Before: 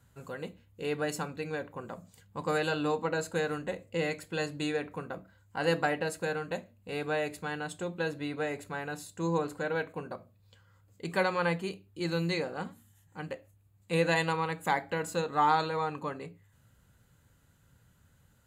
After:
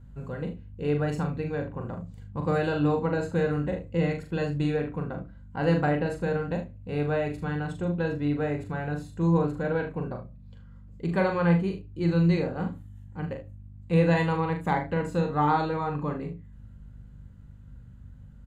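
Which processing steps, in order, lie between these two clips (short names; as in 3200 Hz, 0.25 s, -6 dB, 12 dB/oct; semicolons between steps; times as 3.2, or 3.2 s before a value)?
RIAA curve playback; hum 50 Hz, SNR 22 dB; tapped delay 41/75 ms -5.5/-12.5 dB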